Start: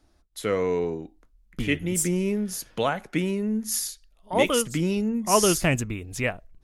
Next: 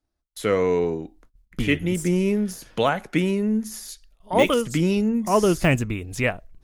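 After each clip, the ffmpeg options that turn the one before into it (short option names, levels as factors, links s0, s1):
-af "agate=range=0.0891:threshold=0.00141:ratio=16:detection=peak,deesser=0.7,volume=1.58"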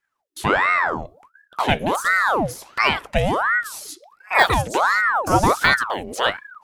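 -af "aeval=exprs='val(0)*sin(2*PI*1000*n/s+1000*0.7/1.4*sin(2*PI*1.4*n/s))':c=same,volume=1.78"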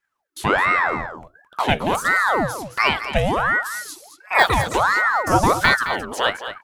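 -af "aecho=1:1:216:0.282"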